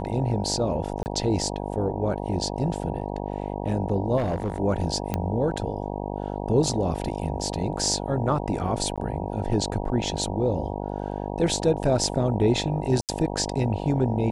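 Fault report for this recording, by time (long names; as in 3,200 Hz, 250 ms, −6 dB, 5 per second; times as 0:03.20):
mains buzz 50 Hz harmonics 19 −31 dBFS
0:01.03–0:01.06: drop-out 29 ms
0:04.17–0:04.59: clipping −21.5 dBFS
0:05.14: click −12 dBFS
0:08.96–0:08.98: drop-out 16 ms
0:13.01–0:13.09: drop-out 78 ms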